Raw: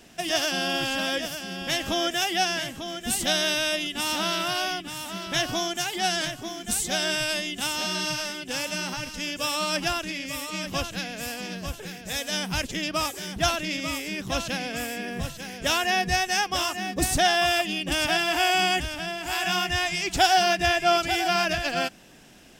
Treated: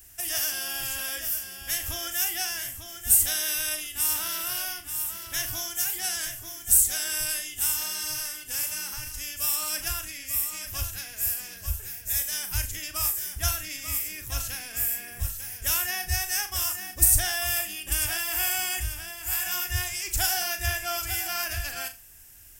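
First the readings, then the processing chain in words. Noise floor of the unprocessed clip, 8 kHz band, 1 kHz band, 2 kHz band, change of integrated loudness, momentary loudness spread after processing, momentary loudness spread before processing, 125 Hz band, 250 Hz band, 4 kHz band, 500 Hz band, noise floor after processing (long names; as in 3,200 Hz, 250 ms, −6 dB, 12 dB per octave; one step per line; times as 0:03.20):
−42 dBFS, +5.5 dB, −12.5 dB, −6.5 dB, −0.5 dB, 11 LU, 10 LU, −0.5 dB, −17.5 dB, −6.5 dB, −15.0 dB, −45 dBFS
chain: drawn EQ curve 100 Hz 0 dB, 170 Hz −27 dB, 360 Hz −20 dB, 550 Hz −22 dB, 1,700 Hz −10 dB, 3,700 Hz −15 dB, 14,000 Hz +14 dB
flutter between parallel walls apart 6.7 metres, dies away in 0.26 s
level +4 dB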